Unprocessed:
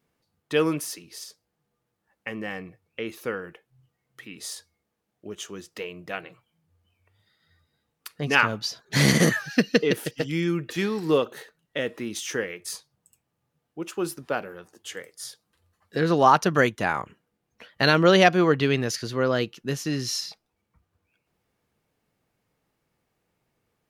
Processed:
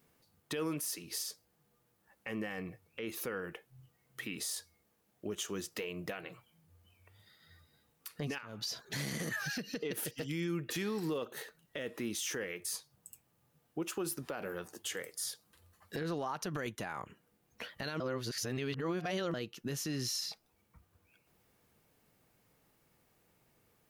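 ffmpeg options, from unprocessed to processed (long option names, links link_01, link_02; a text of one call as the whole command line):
ffmpeg -i in.wav -filter_complex "[0:a]asettb=1/sr,asplit=3[link_01][link_02][link_03];[link_01]atrim=end=8.384[link_04];[link_02]atrim=start=8.38:end=10.01,asetpts=PTS-STARTPTS,afade=type=in:duration=0.004:curve=qsin,afade=type=out:start_time=1.626:duration=0.004:curve=qsin,acompressor=threshold=-31dB:ratio=8:attack=3.2:release=140:knee=1:detection=peak[link_05];[link_03]atrim=start=10.006[link_06];[link_04][link_05]acrossfade=duration=0.004:curve1=hsin:curve2=qsin[link_07];[link_07][link_06]acrossfade=duration=0.004:curve1=qsin:curve2=hsin,asettb=1/sr,asplit=3[link_08][link_09][link_10];[link_08]atrim=end=13.824[link_11];[link_09]atrim=start=13.82:end=16.66,asetpts=PTS-STARTPTS,afade=type=in:duration=0.004:curve=qsin,afade=type=out:start_time=2.836:duration=0.004:curve=qsin,acompressor=threshold=-28dB:ratio=6:attack=3.2:release=140:knee=1:detection=peak[link_12];[link_10]atrim=start=16.656[link_13];[link_11][link_12]acrossfade=duration=0.004:curve1=hsin:curve2=qsin[link_14];[link_14][link_13]acrossfade=duration=0.004:curve1=qsin:curve2=hsin,asplit=3[link_15][link_16][link_17];[link_15]atrim=end=18.002[link_18];[link_16]atrim=start=17.998:end=19.342,asetpts=PTS-STARTPTS,areverse[link_19];[link_17]atrim=start=19.338[link_20];[link_18][link_19]acrossfade=duration=0.004:curve1=hsin:curve2=hsin[link_21];[link_21][link_20]acrossfade=duration=0.004:curve1=hsin:curve2=hsin,highshelf=frequency=10000:gain=10.5,acompressor=threshold=-38dB:ratio=3,alimiter=level_in=7dB:limit=-24dB:level=0:latency=1:release=20,volume=-7dB,volume=3dB" out.wav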